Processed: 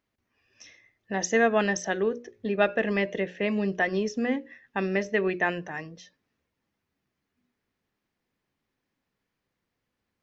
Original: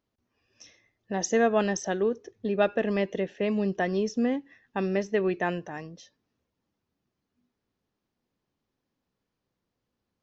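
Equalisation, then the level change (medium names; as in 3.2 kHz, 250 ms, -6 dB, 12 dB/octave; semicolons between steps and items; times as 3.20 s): peaking EQ 2 kHz +7.5 dB 0.97 oct; hum notches 60/120/180/240/300/360/420/480/540/600 Hz; 0.0 dB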